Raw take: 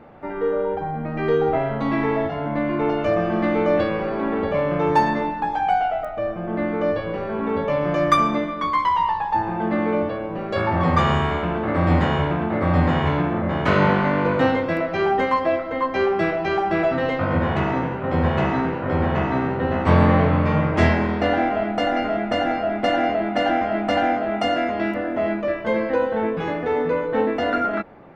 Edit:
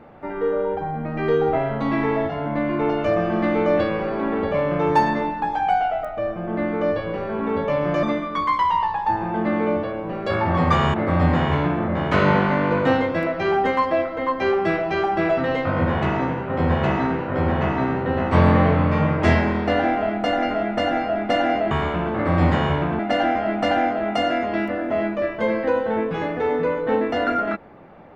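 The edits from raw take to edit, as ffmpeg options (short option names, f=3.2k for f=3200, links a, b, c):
-filter_complex "[0:a]asplit=5[a][b][c][d][e];[a]atrim=end=8.032[f];[b]atrim=start=8.288:end=11.202[g];[c]atrim=start=12.478:end=23.252[h];[d]atrim=start=11.198:end=12.482[i];[e]atrim=start=23.248[j];[f][g]acrossfade=d=0.004:c1=hsin:c2=hsin[k];[k][h]acrossfade=d=0.004:c1=hsin:c2=hsin[l];[l][i]acrossfade=d=0.004:c1=hsin:c2=hsin[m];[m][j]acrossfade=d=0.004:c1=hsin:c2=hsin"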